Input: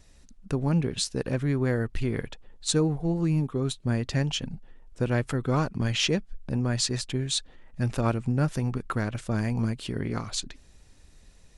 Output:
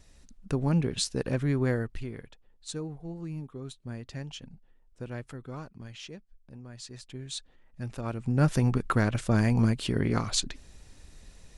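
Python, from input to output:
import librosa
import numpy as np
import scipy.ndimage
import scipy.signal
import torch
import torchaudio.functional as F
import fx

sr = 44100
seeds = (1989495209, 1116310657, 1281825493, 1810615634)

y = fx.gain(x, sr, db=fx.line((1.7, -1.0), (2.19, -12.5), (5.2, -12.5), (6.07, -19.0), (6.73, -19.0), (7.34, -9.5), (8.06, -9.5), (8.48, 3.5)))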